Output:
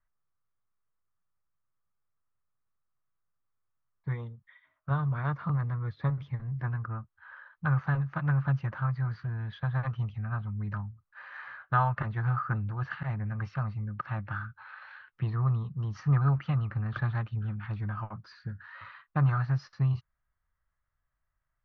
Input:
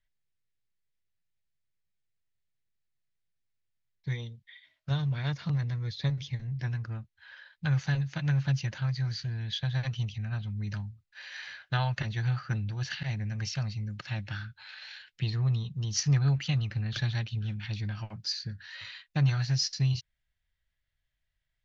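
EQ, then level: resonant low-pass 1.2 kHz, resonance Q 5.2; 0.0 dB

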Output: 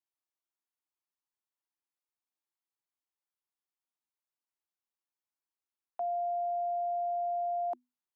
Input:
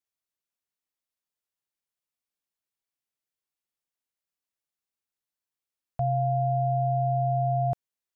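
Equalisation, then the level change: rippled Chebyshev high-pass 240 Hz, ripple 9 dB; 0.0 dB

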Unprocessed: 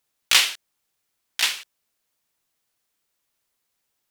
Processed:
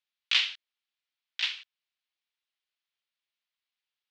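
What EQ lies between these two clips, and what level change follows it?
band-pass filter 3.4 kHz, Q 1.4; distance through air 170 m; -2.0 dB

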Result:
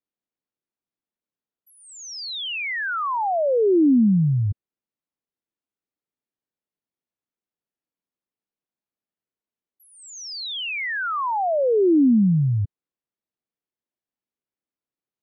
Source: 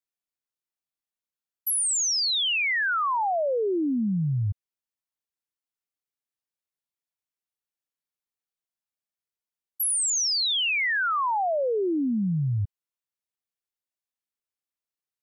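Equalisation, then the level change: distance through air 170 m; peaking EQ 270 Hz +11.5 dB 2.5 oct; -1.5 dB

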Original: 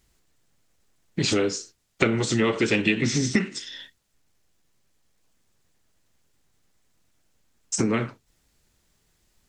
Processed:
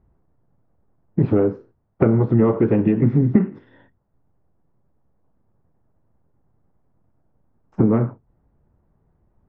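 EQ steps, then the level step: four-pole ladder low-pass 1.2 kHz, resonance 25%; peaking EQ 110 Hz +7.5 dB 2.3 oct; +9.0 dB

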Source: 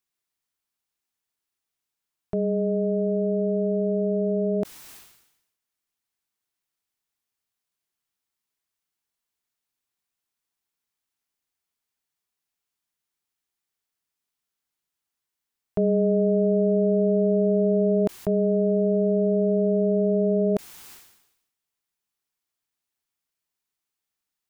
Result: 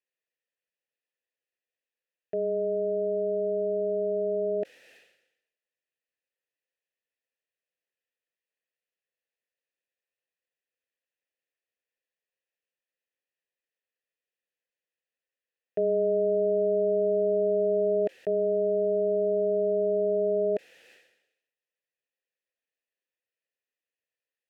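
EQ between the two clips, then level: vowel filter e; +9.0 dB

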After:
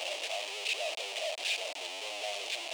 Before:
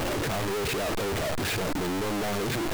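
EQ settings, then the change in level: Savitzky-Golay filter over 9 samples; ladder high-pass 580 Hz, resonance 65%; resonant high shelf 2 kHz +10.5 dB, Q 3; -3.5 dB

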